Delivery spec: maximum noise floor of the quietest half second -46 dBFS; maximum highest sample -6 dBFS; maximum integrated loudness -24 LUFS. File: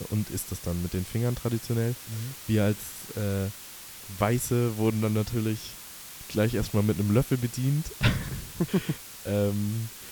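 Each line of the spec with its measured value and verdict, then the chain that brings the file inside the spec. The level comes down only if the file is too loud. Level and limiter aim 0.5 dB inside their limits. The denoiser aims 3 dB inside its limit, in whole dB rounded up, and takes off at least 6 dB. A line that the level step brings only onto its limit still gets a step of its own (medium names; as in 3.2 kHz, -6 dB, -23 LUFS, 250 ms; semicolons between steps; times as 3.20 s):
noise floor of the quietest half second -44 dBFS: fail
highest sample -10.0 dBFS: pass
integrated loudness -28.5 LUFS: pass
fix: noise reduction 6 dB, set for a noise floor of -44 dBFS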